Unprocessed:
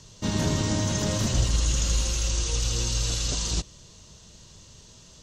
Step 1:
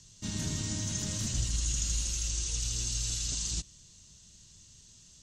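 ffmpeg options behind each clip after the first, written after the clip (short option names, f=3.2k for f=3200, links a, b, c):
-af "equalizer=f=500:t=o:w=1:g=-10,equalizer=f=1k:t=o:w=1:g=-7,equalizer=f=8k:t=o:w=1:g=8,volume=-8.5dB"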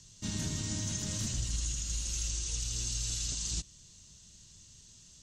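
-af "alimiter=limit=-24dB:level=0:latency=1:release=297"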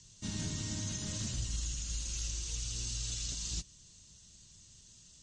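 -filter_complex "[0:a]acrossover=split=7600[a][b];[b]acompressor=threshold=-51dB:ratio=4:attack=1:release=60[c];[a][c]amix=inputs=2:normalize=0,volume=-2dB" -ar 32000 -c:a libmp3lame -b:a 40k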